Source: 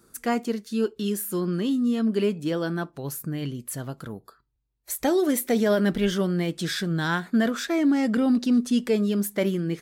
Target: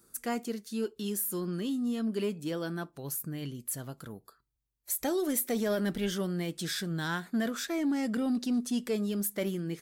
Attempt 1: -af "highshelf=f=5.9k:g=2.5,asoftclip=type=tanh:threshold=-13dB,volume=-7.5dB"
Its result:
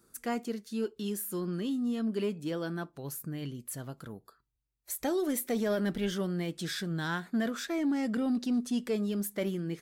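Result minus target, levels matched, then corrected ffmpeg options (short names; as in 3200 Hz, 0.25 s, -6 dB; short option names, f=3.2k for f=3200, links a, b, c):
8000 Hz band -4.0 dB
-af "highshelf=f=5.9k:g=9.5,asoftclip=type=tanh:threshold=-13dB,volume=-7.5dB"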